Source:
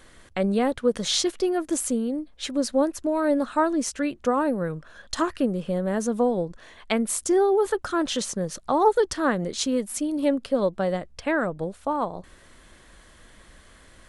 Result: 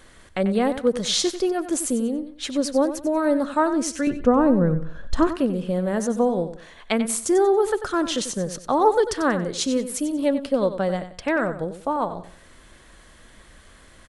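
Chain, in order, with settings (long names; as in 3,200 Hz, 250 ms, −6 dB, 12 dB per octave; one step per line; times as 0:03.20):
0:04.07–0:05.27: spectral tilt −3.5 dB per octave
repeating echo 93 ms, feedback 28%, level −11.5 dB
level +1.5 dB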